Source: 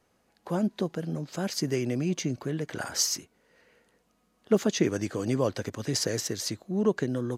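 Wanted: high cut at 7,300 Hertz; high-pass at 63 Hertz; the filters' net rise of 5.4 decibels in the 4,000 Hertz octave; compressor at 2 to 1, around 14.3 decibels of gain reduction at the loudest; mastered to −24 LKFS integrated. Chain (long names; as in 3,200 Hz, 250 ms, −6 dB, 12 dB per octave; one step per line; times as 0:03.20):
high-pass filter 63 Hz
low-pass filter 7,300 Hz
parametric band 4,000 Hz +8 dB
downward compressor 2 to 1, threshold −45 dBFS
level +15.5 dB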